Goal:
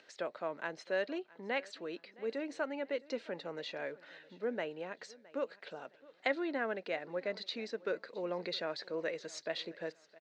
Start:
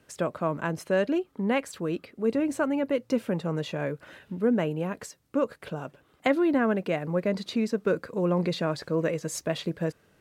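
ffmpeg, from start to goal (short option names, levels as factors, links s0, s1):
-af "acompressor=mode=upward:threshold=0.00501:ratio=2.5,highpass=450,equalizer=f=1100:t=q:w=4:g=-6,equalizer=f=1900:t=q:w=4:g=5,equalizer=f=4100:t=q:w=4:g=8,lowpass=f=5900:w=0.5412,lowpass=f=5900:w=1.3066,aecho=1:1:665|1330:0.0794|0.0262,volume=0.422"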